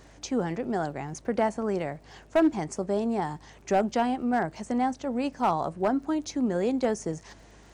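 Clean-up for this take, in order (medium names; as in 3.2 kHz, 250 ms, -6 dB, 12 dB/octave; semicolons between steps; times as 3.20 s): clip repair -16 dBFS; de-click; de-hum 51.3 Hz, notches 5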